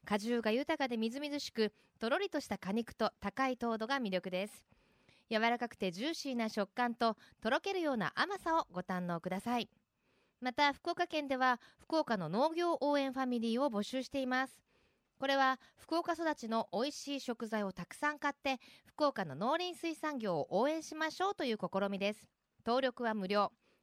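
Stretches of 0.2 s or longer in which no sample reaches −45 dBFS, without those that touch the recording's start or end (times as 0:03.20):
0:01.68–0:02.01
0:04.56–0:05.31
0:07.13–0:07.43
0:09.64–0:10.42
0:11.56–0:11.90
0:14.47–0:15.22
0:15.55–0:15.89
0:18.56–0:18.98
0:22.14–0:22.66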